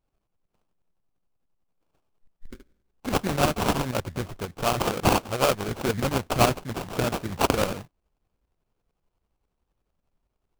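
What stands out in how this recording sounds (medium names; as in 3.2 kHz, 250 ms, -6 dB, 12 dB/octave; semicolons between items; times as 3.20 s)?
tremolo saw up 11 Hz, depth 65%; aliases and images of a low sample rate 1.9 kHz, jitter 20%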